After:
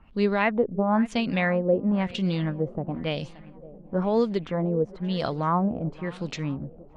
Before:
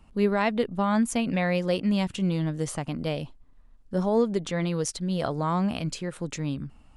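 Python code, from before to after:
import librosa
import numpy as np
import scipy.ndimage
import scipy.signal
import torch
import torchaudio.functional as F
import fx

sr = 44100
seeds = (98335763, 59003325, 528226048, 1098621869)

y = fx.echo_swing(x, sr, ms=960, ratio=1.5, feedback_pct=37, wet_db=-20.0)
y = fx.filter_lfo_lowpass(y, sr, shape='sine', hz=1.0, low_hz=480.0, high_hz=5000.0, q=1.9)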